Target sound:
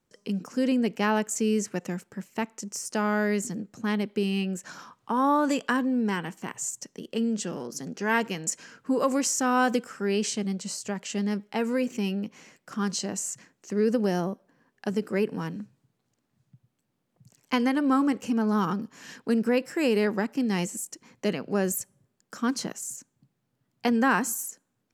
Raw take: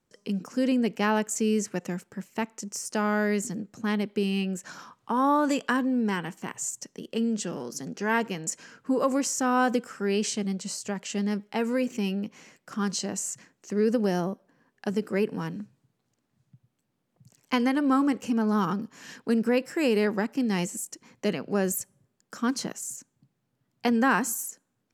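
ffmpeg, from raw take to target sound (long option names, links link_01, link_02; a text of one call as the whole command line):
ffmpeg -i in.wav -filter_complex "[0:a]asettb=1/sr,asplit=3[link_01][link_02][link_03];[link_01]atrim=end=7.674[link_04];[link_02]atrim=start=7.67:end=9.84,asetpts=PTS-STARTPTS,afade=type=in:duration=0.004:curve=qsin,afade=type=out:start_time=2.166:duration=0.004:curve=qsin,adynamicequalizer=threshold=0.02:dfrequency=1600:dqfactor=0.7:tfrequency=1600:tqfactor=0.7:attack=5:release=100:ratio=0.375:range=1.5:mode=boostabove:tftype=highshelf[link_05];[link_03]atrim=start=9.836[link_06];[link_04][link_05]acrossfade=duration=0.004:curve1=hsin:curve2=qsin[link_07];[link_07][link_06]acrossfade=duration=0.004:curve1=qsin:curve2=hsin" out.wav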